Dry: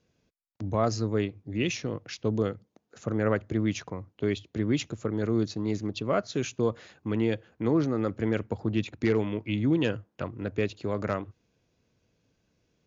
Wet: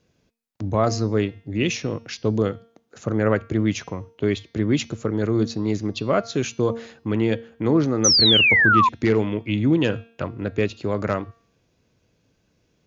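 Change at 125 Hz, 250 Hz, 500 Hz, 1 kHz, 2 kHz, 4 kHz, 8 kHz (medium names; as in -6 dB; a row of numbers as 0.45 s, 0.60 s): +6.0 dB, +6.0 dB, +6.0 dB, +11.5 dB, +15.0 dB, +19.0 dB, no reading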